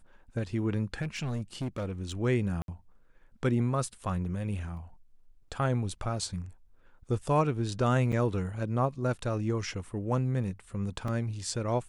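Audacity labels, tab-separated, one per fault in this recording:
1.010000	2.120000	clipping −29 dBFS
2.620000	2.680000	drop-out 62 ms
4.770000	4.770000	drop-out 2.4 ms
8.120000	8.130000	drop-out 6.7 ms
11.080000	11.080000	drop-out 2.9 ms

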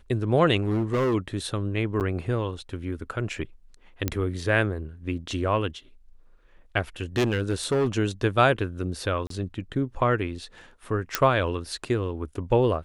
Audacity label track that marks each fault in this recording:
0.620000	1.150000	clipping −20.5 dBFS
2.000000	2.010000	drop-out 8.5 ms
4.080000	4.080000	click −10 dBFS
7.160000	7.880000	clipping −19 dBFS
9.270000	9.300000	drop-out 33 ms
11.150000	11.150000	click −4 dBFS

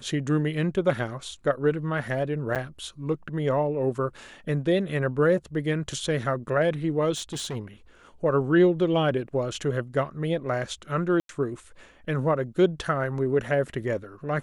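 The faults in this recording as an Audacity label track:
2.550000	2.560000	drop-out 7.8 ms
7.150000	7.570000	clipping −28 dBFS
11.200000	11.290000	drop-out 92 ms

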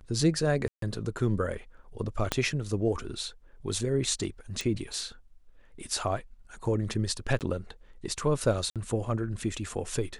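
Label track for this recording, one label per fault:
0.680000	0.820000	drop-out 143 ms
2.320000	2.320000	click −10 dBFS
4.610000	4.610000	click
7.390000	7.410000	drop-out 18 ms
8.700000	8.760000	drop-out 57 ms

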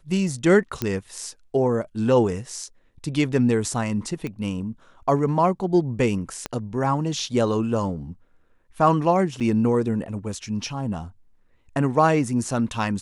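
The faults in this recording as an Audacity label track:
0.820000	0.820000	click −10 dBFS
4.270000	4.270000	click −18 dBFS
6.460000	6.460000	click −12 dBFS
9.400000	9.410000	drop-out 6.5 ms

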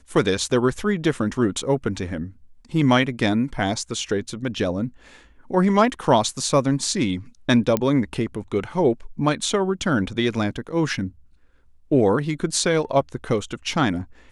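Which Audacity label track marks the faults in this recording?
7.770000	7.770000	click −8 dBFS

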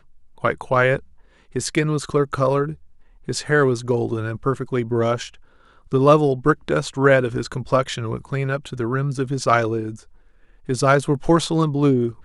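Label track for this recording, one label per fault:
9.440000	9.440000	drop-out 3.9 ms

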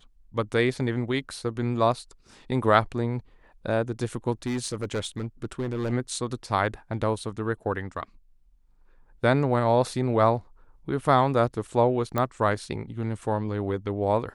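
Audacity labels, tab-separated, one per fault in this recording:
4.460000	5.930000	clipping −24 dBFS
12.180000	12.180000	click −13 dBFS

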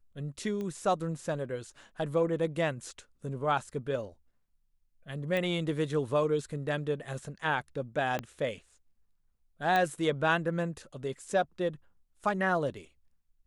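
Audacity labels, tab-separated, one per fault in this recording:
0.610000	0.610000	click −26 dBFS
5.370000	5.370000	click −20 dBFS
8.190000	8.190000	click −19 dBFS
9.760000	9.760000	click −16 dBFS

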